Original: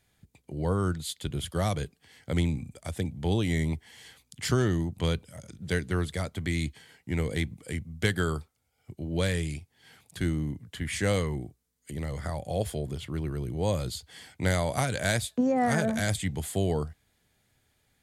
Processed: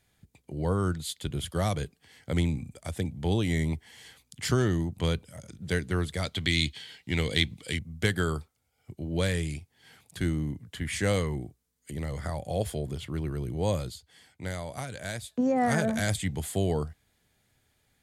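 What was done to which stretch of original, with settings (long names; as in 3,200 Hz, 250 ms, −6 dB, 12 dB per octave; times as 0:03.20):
0:06.22–0:07.79: parametric band 3,600 Hz +14.5 dB 1.3 octaves
0:13.75–0:15.46: duck −9 dB, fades 0.23 s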